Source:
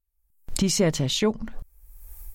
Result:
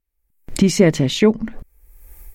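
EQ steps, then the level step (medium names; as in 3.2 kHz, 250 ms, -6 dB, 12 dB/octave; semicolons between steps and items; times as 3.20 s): peaking EQ 290 Hz +11 dB 2.3 oct; peaking EQ 2.1 kHz +9 dB 0.77 oct; 0.0 dB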